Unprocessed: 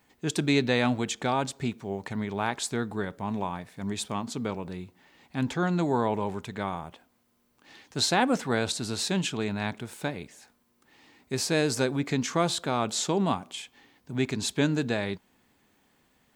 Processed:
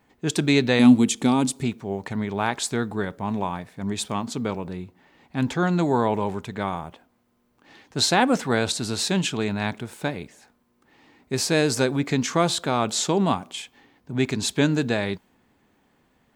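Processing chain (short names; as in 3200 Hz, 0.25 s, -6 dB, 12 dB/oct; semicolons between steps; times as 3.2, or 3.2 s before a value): 0.79–1.63 fifteen-band EQ 250 Hz +11 dB, 630 Hz -7 dB, 1600 Hz -8 dB, 10000 Hz +11 dB; mismatched tape noise reduction decoder only; gain +4.5 dB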